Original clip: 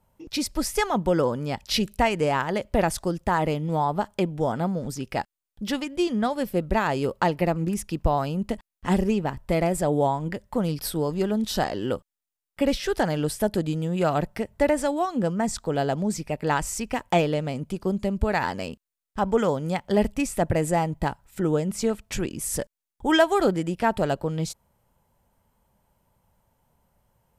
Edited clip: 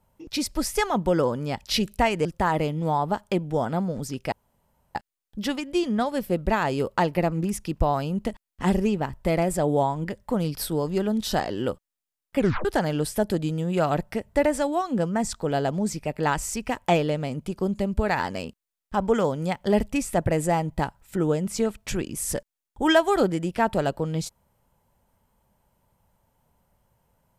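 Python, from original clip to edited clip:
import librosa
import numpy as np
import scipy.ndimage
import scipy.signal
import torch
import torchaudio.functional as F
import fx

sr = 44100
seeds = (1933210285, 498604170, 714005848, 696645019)

y = fx.edit(x, sr, fx.cut(start_s=2.25, length_s=0.87),
    fx.insert_room_tone(at_s=5.19, length_s=0.63),
    fx.tape_stop(start_s=12.62, length_s=0.27), tone=tone)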